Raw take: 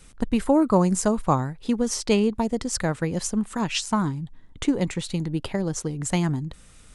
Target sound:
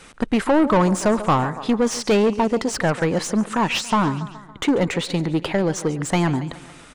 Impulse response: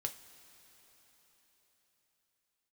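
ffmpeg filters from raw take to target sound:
-filter_complex "[0:a]aecho=1:1:140|280|420|560:0.1|0.056|0.0314|0.0176,asplit=2[a][b];[b]highpass=f=720:p=1,volume=24dB,asoftclip=type=tanh:threshold=-6.5dB[c];[a][c]amix=inputs=2:normalize=0,lowpass=f=1.7k:p=1,volume=-6dB,volume=-1.5dB"

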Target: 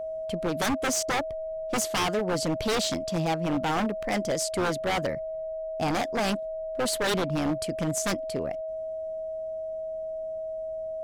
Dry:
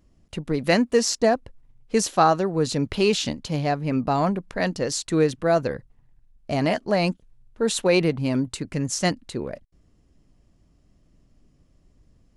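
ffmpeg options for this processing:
-af "aeval=exprs='val(0)+0.0355*sin(2*PI*570*n/s)':c=same,aeval=exprs='0.119*(abs(mod(val(0)/0.119+3,4)-2)-1)':c=same,asetrate=49392,aresample=44100,volume=-2dB"

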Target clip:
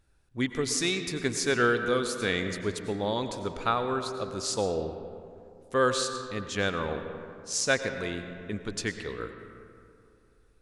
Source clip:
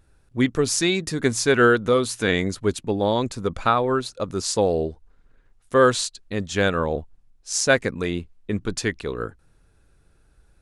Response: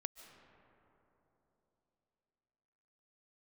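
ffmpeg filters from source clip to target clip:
-filter_complex "[0:a]equalizer=f=3.9k:w=0.38:g=4.5[a];[1:a]atrim=start_sample=2205,asetrate=66150,aresample=44100[b];[a][b]afir=irnorm=-1:irlink=0,volume=-2dB"

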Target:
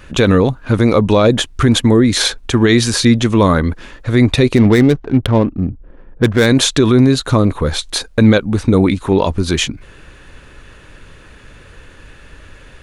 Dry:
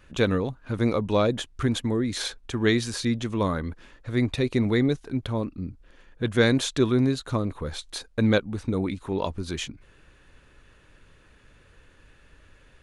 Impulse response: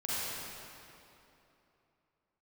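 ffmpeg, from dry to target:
-filter_complex "[0:a]asplit=3[a][b][c];[a]afade=t=out:st=4.55:d=0.02[d];[b]adynamicsmooth=sensitivity=5.5:basefreq=760,afade=t=in:st=4.55:d=0.02,afade=t=out:st=6.45:d=0.02[e];[c]afade=t=in:st=6.45:d=0.02[f];[d][e][f]amix=inputs=3:normalize=0,alimiter=level_in=16.5dB:limit=-1dB:release=50:level=0:latency=1,volume=-1dB"

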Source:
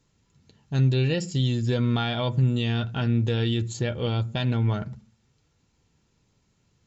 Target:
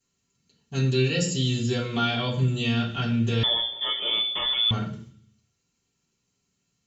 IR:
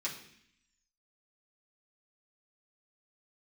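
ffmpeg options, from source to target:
-filter_complex "[0:a]agate=range=-9dB:threshold=-52dB:ratio=16:detection=peak,crystalizer=i=2:c=0[a];[1:a]atrim=start_sample=2205,asetrate=52920,aresample=44100[b];[a][b]afir=irnorm=-1:irlink=0,asettb=1/sr,asplit=3[c][d][e];[c]atrim=end=3.434[f];[d]atrim=start=3.43:end=4.71,asetpts=PTS-STARTPTS,afade=t=in:d=0.004:c=qsin,afade=t=out:st=1.276:d=0.004:c=qsin,lowpass=f=3.1k:t=q:w=0.5098,lowpass=f=3.1k:t=q:w=0.6013,lowpass=f=3.1k:t=q:w=0.9,lowpass=f=3.1k:t=q:w=2.563,afreqshift=-3600[g];[e]atrim=start=4.706[h];[f][g]acrossfade=d=0.004:c1=hsin:c2=qsin[i];[i][h]acrossfade=d=0.004:c1=qsin:c2=hsin"

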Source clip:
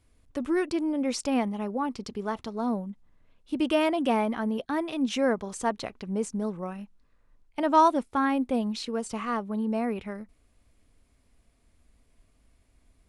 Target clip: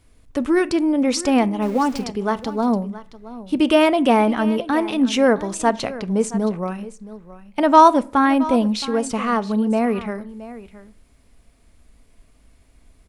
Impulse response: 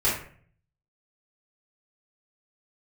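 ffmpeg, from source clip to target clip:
-filter_complex "[0:a]asettb=1/sr,asplit=3[a][b][c];[a]atrim=end=1.624[d];[b]atrim=start=1.62:end=2.04,asetpts=PTS-STARTPTS,afade=t=in:d=0.004:c=qsin,afade=t=out:st=0.416:d=0.004:c=qsin,aeval=exprs='val(0)+0.5*0.00841*sgn(val(0))':c=same[e];[c]atrim=start=2.036[f];[d][e]acrossfade=d=0.004:c1=hsin:c2=qsin[g];[g][f]acrossfade=d=0.004:c1=qsin:c2=hsin,aecho=1:1:671:0.15,asplit=2[h][i];[1:a]atrim=start_sample=2205[j];[i][j]afir=irnorm=-1:irlink=0,volume=-29.5dB[k];[h][k]amix=inputs=2:normalize=0,volume=9dB"

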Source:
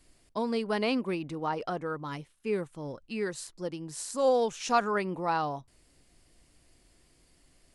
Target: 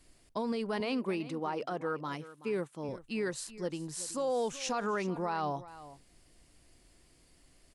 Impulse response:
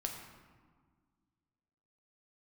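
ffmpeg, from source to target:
-filter_complex "[0:a]asettb=1/sr,asplit=3[a][b][c];[a]atrim=end=0.804[d];[b]atrim=start=0.8:end=2.89,asetpts=PTS-STARTPTS,afade=t=in:d=0.004:c=qsin,afade=t=out:st=2.086:d=0.004:c=qsin,highpass=160[e];[c]atrim=start=2.886[f];[d][e]acrossfade=d=0.004:c1=hsin:c2=qsin[g];[g][f]acrossfade=d=0.004:c1=qsin:c2=hsin,alimiter=level_in=1dB:limit=-24dB:level=0:latency=1:release=58,volume=-1dB,aecho=1:1:378:0.158"

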